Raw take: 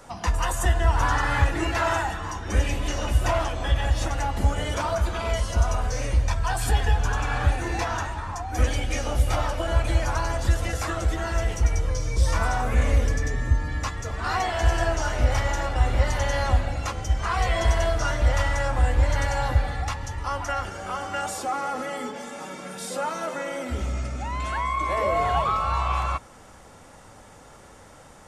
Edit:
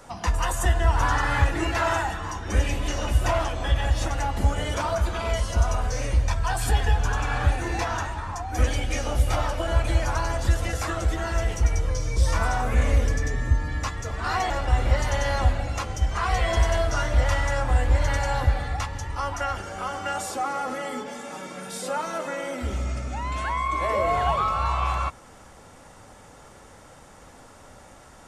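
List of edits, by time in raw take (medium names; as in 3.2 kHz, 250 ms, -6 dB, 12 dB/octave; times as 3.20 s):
14.50–15.58 s: delete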